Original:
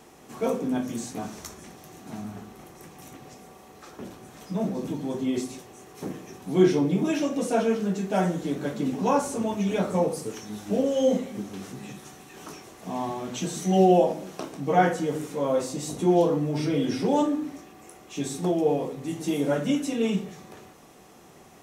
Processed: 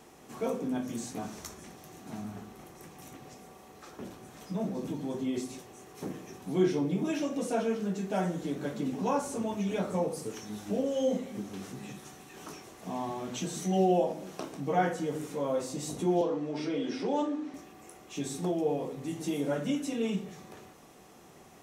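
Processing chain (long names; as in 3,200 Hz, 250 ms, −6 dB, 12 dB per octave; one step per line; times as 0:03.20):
0:16.21–0:17.54: three-way crossover with the lows and the highs turned down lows −21 dB, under 200 Hz, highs −17 dB, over 6,800 Hz
in parallel at −1.5 dB: downward compressor, threshold −30 dBFS, peak gain reduction 16 dB
on the sum: level −8.5 dB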